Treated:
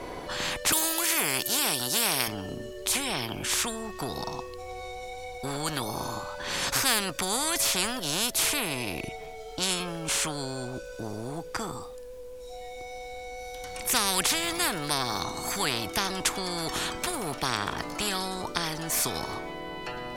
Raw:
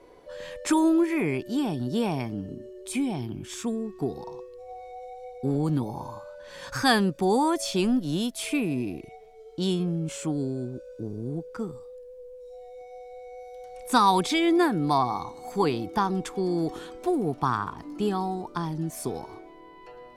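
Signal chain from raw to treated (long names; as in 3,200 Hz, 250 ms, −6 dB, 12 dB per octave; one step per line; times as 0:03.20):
0:00.72–0:02.28: RIAA equalisation recording
0:14.36–0:14.94: surface crackle 120 per second −49 dBFS
every bin compressed towards the loudest bin 4 to 1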